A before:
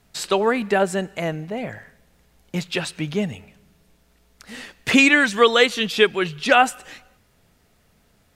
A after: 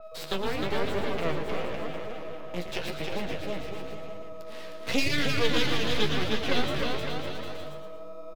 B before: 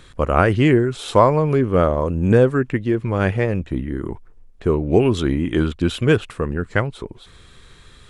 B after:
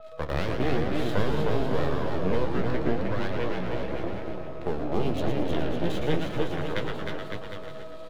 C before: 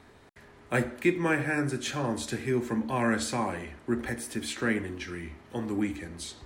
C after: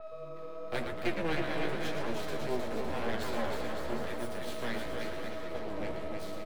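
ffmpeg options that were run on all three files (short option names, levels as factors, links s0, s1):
-filter_complex "[0:a]aeval=exprs='max(val(0),0)':c=same,aeval=exprs='val(0)+0.0141*sin(2*PI*640*n/s)':c=same,highpass=f=54:w=0.5412,highpass=f=54:w=1.3066,aeval=exprs='max(val(0),0)':c=same,asplit=2[s0][s1];[s1]asplit=6[s2][s3][s4][s5][s6][s7];[s2]adelay=114,afreqshift=-150,volume=0.501[s8];[s3]adelay=228,afreqshift=-300,volume=0.234[s9];[s4]adelay=342,afreqshift=-450,volume=0.111[s10];[s5]adelay=456,afreqshift=-600,volume=0.0519[s11];[s6]adelay=570,afreqshift=-750,volume=0.0245[s12];[s7]adelay=684,afreqshift=-900,volume=0.0115[s13];[s8][s9][s10][s11][s12][s13]amix=inputs=6:normalize=0[s14];[s0][s14]amix=inputs=2:normalize=0,acrossover=split=270|3000[s15][s16][s17];[s16]acompressor=threshold=0.0355:ratio=6[s18];[s15][s18][s17]amix=inputs=3:normalize=0,equalizer=f=500:t=o:w=1:g=6,equalizer=f=4000:t=o:w=1:g=3,equalizer=f=8000:t=o:w=1:g=-6,asplit=2[s19][s20];[s20]aecho=0:1:310|558|756.4|915.1|1042:0.631|0.398|0.251|0.158|0.1[s21];[s19][s21]amix=inputs=2:normalize=0,flanger=delay=8.4:depth=9.5:regen=38:speed=0.94:shape=triangular,adynamicequalizer=threshold=0.00562:dfrequency=4700:dqfactor=0.7:tfrequency=4700:tqfactor=0.7:attack=5:release=100:ratio=0.375:range=3:mode=cutabove:tftype=highshelf"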